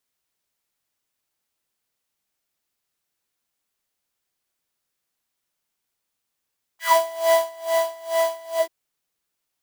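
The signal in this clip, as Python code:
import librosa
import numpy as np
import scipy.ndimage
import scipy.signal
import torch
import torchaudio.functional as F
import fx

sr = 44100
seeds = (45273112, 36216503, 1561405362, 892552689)

y = fx.sub_patch_tremolo(sr, seeds[0], note=76, wave='square', wave2='saw', interval_st=7, detune_cents=6, level2_db=0.0, sub_db=-9, noise_db=-1.0, kind='highpass', cutoff_hz=370.0, q=6.3, env_oct=2.5, env_decay_s=0.17, env_sustain_pct=40, attack_ms=170.0, decay_s=0.53, sustain_db=-8, release_s=0.09, note_s=1.8, lfo_hz=2.3, tremolo_db=23.0)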